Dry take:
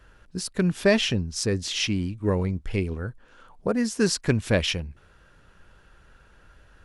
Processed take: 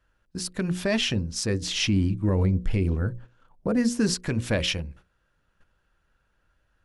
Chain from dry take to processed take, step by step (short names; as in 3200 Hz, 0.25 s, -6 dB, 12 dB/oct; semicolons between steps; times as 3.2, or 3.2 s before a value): gate -47 dBFS, range -15 dB; notches 60/120/180/240/300/360/420/480/540 Hz; 1.62–4.14 low shelf 450 Hz +7.5 dB; notch 420 Hz, Q 12; limiter -14.5 dBFS, peak gain reduction 7.5 dB